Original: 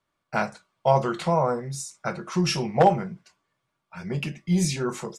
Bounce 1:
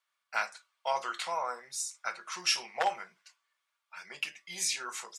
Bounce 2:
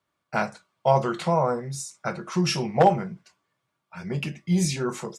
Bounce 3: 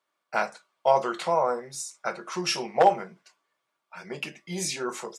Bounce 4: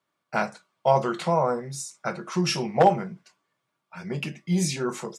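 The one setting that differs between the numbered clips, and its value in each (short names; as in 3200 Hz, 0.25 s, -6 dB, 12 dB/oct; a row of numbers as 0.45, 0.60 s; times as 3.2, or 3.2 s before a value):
HPF, cutoff: 1400, 57, 400, 150 Hz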